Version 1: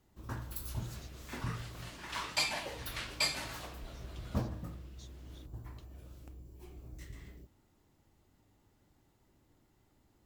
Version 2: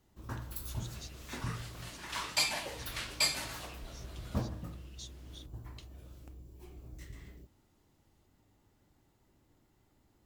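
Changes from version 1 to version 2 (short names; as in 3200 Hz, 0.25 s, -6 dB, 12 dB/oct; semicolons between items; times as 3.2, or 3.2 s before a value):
speech +10.0 dB; second sound: add high shelf 6000 Hz +7 dB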